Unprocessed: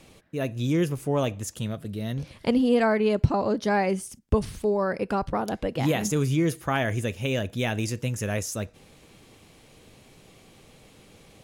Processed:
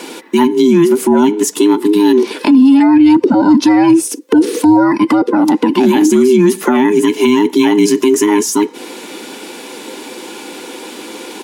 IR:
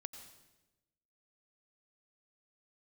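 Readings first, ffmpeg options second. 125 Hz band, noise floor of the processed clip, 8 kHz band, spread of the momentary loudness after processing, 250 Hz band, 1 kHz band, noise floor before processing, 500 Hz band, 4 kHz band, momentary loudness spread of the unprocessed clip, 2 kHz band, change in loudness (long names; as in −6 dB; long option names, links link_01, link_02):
+0.5 dB, −31 dBFS, +15.5 dB, 20 LU, +19.5 dB, +13.5 dB, −55 dBFS, +14.0 dB, +14.0 dB, 10 LU, +9.5 dB, +16.0 dB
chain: -filter_complex "[0:a]afftfilt=real='real(if(between(b,1,1008),(2*floor((b-1)/24)+1)*24-b,b),0)':imag='imag(if(between(b,1,1008),(2*floor((b-1)/24)+1)*24-b,b),0)*if(between(b,1,1008),-1,1)':win_size=2048:overlap=0.75,highpass=frequency=230:width=0.5412,highpass=frequency=230:width=1.3066,aecho=1:1:3.5:0.33,acrossover=split=380[link_01][link_02];[link_02]acompressor=threshold=-39dB:ratio=10[link_03];[link_01][link_03]amix=inputs=2:normalize=0,alimiter=level_in=25.5dB:limit=-1dB:release=50:level=0:latency=1,volume=-1dB"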